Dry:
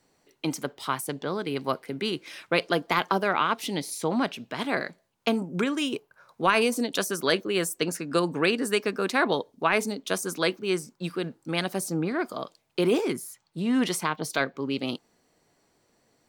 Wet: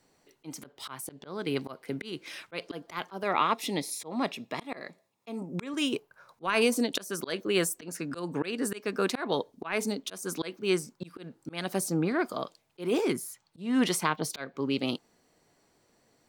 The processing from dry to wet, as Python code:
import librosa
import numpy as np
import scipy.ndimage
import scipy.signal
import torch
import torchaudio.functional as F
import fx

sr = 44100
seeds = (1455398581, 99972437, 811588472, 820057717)

y = fx.notch_comb(x, sr, f0_hz=1500.0, at=(3.23, 5.74))
y = fx.auto_swell(y, sr, attack_ms=247.0)